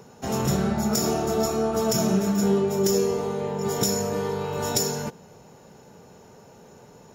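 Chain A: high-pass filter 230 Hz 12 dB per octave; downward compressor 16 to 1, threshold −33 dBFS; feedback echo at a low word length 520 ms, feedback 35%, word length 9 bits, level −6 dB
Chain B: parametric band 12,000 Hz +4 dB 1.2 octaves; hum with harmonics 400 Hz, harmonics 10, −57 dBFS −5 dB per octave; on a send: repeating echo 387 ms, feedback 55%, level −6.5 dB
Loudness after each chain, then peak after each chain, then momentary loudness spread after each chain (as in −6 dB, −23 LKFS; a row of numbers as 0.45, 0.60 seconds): −36.5, −23.0 LKFS; −21.5, −7.0 dBFS; 14, 16 LU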